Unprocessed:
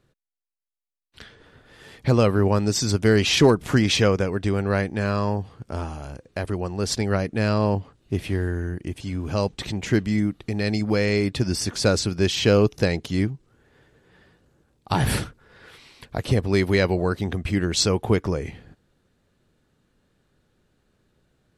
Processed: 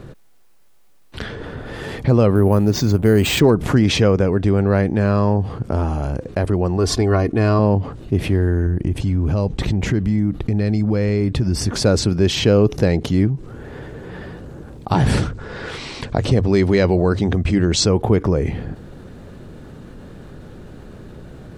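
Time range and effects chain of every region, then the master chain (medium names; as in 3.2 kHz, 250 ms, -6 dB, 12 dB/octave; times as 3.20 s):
2.35–3.40 s: careless resampling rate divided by 4×, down filtered, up hold + hysteresis with a dead band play -40.5 dBFS
6.77–7.59 s: peaking EQ 1.1 kHz +7 dB 0.23 oct + comb 2.8 ms, depth 54%
8.66–11.74 s: bass shelf 110 Hz +9 dB + compression 2.5:1, threshold -26 dBFS
14.92–17.85 s: low-pass 7.8 kHz 24 dB/octave + treble shelf 4.9 kHz +9.5 dB + hum notches 50/100 Hz
whole clip: tilt shelf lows +6 dB, about 1.4 kHz; level flattener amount 50%; trim -3.5 dB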